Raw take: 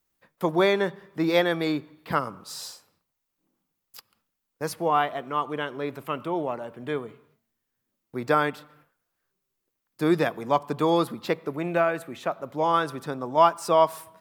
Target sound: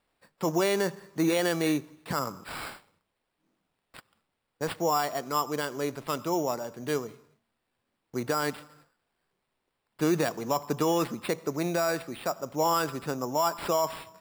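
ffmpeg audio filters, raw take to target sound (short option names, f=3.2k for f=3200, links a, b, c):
-af "alimiter=limit=-16.5dB:level=0:latency=1:release=33,acrusher=samples=7:mix=1:aa=0.000001"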